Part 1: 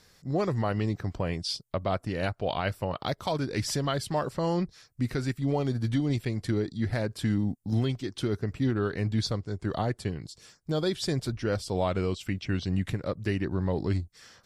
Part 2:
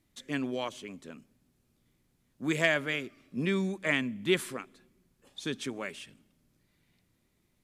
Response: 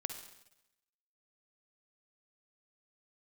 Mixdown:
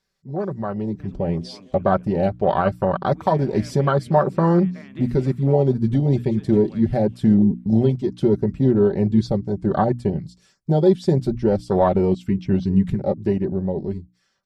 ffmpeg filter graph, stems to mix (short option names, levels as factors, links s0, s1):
-filter_complex "[0:a]afwtdn=0.0355,bandreject=f=60:t=h:w=6,bandreject=f=120:t=h:w=6,bandreject=f=180:t=h:w=6,bandreject=f=240:t=h:w=6,bandreject=f=300:t=h:w=6,aecho=1:1:5.2:0.54,volume=0.944,asplit=2[s0][s1];[1:a]lowpass=f=1300:p=1,acompressor=threshold=0.02:ratio=6,adelay=700,volume=0.299,asplit=2[s2][s3];[s3]volume=0.422[s4];[s1]apad=whole_len=367554[s5];[s2][s5]sidechaincompress=threshold=0.0158:ratio=8:attack=32:release=422[s6];[s4]aecho=0:1:211|422|633|844|1055:1|0.34|0.116|0.0393|0.0134[s7];[s0][s6][s7]amix=inputs=3:normalize=0,dynaudnorm=f=110:g=21:m=3.76,highshelf=f=8700:g=-5"